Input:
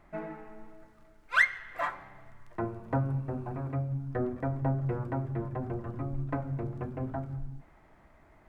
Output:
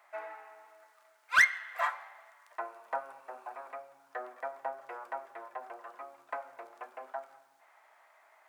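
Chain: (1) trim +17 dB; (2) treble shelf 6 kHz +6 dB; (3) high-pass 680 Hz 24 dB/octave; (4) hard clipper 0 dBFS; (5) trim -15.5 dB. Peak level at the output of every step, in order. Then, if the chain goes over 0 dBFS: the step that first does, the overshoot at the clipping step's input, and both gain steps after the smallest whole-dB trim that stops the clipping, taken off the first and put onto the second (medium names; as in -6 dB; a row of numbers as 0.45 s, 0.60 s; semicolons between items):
+6.5 dBFS, +7.0 dBFS, +6.5 dBFS, 0.0 dBFS, -15.5 dBFS; step 1, 6.5 dB; step 1 +10 dB, step 5 -8.5 dB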